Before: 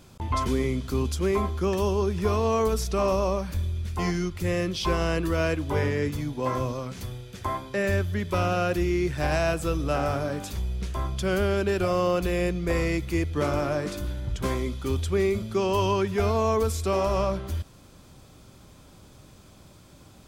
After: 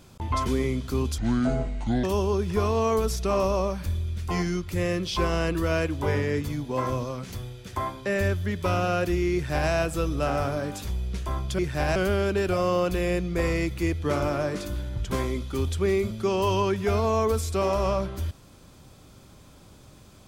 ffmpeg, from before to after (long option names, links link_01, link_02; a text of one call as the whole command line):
ffmpeg -i in.wav -filter_complex "[0:a]asplit=5[link_01][link_02][link_03][link_04][link_05];[link_01]atrim=end=1.184[link_06];[link_02]atrim=start=1.18:end=1.72,asetpts=PTS-STARTPTS,asetrate=27783,aresample=44100[link_07];[link_03]atrim=start=1.716:end=11.272[link_08];[link_04]atrim=start=9.018:end=9.392[link_09];[link_05]atrim=start=11.268[link_10];[link_06][link_07]acrossfade=duration=0.004:curve1=hsin:curve2=hsin[link_11];[link_11][link_08]acrossfade=duration=0.004:curve1=hsin:curve2=hsin[link_12];[link_12][link_09]acrossfade=duration=0.004:curve1=hsin:curve2=hsin[link_13];[link_13][link_10]acrossfade=duration=0.004:curve1=hsin:curve2=hsin" out.wav